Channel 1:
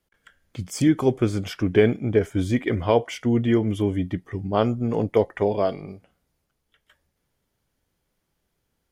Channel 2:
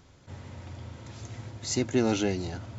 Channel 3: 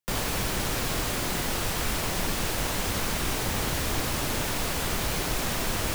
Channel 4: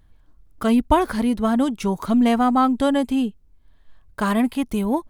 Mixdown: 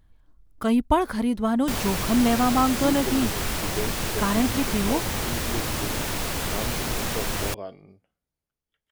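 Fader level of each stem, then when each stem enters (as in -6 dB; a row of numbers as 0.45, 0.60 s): -14.0, -12.0, +0.5, -3.5 dB; 2.00, 1.10, 1.60, 0.00 s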